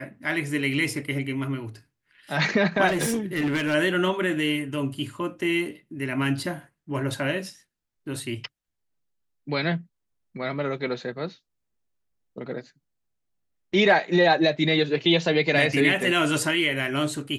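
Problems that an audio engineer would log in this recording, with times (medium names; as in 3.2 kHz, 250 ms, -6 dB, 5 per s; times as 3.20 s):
2.87–3.75 s: clipped -20.5 dBFS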